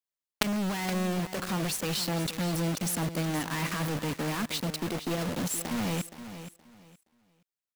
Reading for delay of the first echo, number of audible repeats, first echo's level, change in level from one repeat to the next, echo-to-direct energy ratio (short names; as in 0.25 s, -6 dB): 0.471 s, 2, -12.0 dB, -13.0 dB, -12.0 dB